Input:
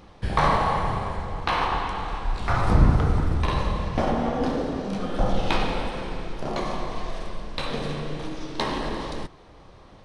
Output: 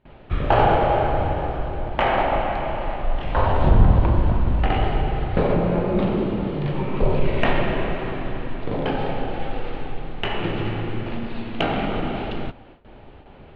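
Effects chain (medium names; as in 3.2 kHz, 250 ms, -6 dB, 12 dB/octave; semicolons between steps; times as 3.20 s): gate with hold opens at -40 dBFS; low-pass 4.8 kHz 24 dB/octave; in parallel at -7.5 dB: saturation -17.5 dBFS, distortion -12 dB; on the sum: speed mistake 45 rpm record played at 33 rpm; trim +1.5 dB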